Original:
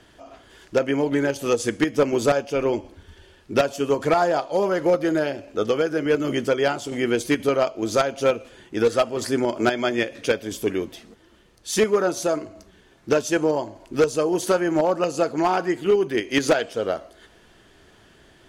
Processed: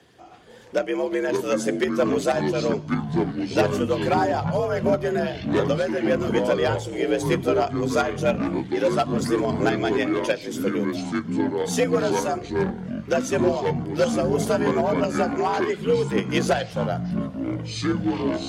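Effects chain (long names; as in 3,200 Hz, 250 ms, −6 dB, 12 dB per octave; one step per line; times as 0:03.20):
spectral magnitudes quantised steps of 15 dB
frequency shifter +62 Hz
delay with pitch and tempo change per echo 186 ms, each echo −7 semitones, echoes 3
level −2.5 dB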